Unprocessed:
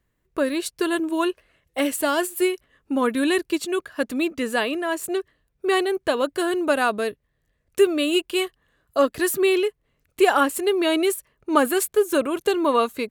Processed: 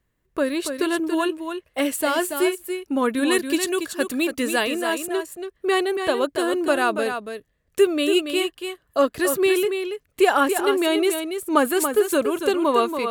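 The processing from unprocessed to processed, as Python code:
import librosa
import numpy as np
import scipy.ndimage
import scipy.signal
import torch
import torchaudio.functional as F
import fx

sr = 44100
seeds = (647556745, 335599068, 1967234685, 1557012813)

p1 = fx.high_shelf(x, sr, hz=4900.0, db=9.0, at=(3.31, 4.98))
y = p1 + fx.echo_single(p1, sr, ms=282, db=-7.5, dry=0)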